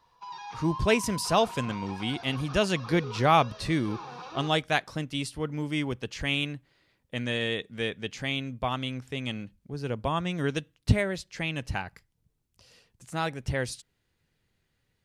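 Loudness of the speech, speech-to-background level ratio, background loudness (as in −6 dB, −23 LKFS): −29.5 LKFS, 12.0 dB, −41.5 LKFS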